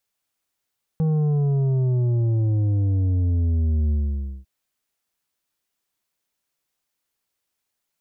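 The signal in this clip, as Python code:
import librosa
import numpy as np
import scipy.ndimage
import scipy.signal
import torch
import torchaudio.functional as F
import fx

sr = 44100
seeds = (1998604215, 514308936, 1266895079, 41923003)

y = fx.sub_drop(sr, level_db=-18.5, start_hz=160.0, length_s=3.45, drive_db=7.5, fade_s=0.54, end_hz=65.0)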